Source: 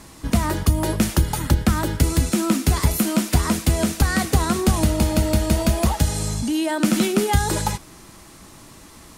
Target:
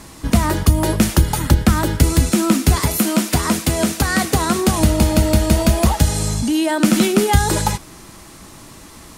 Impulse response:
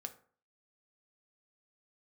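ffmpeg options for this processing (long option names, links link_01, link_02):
-filter_complex "[0:a]asettb=1/sr,asplit=3[link_01][link_02][link_03];[link_01]atrim=end=2.754[link_04];[link_02]atrim=start=2.75:end=4.8,asetpts=PTS-STARTPTS,afade=type=in:duration=0.004:curve=qsin,afade=type=out:start_time=2.046:duration=0.004:curve=qsin,highpass=frequency=150:poles=1[link_05];[link_03]atrim=start=4.796[link_06];[link_04][link_05]acrossfade=duration=0.004:curve1=hsin:curve2=qsin[link_07];[link_07][link_06]acrossfade=duration=0.004:curve1=qsin:curve2=hsin,volume=4.5dB"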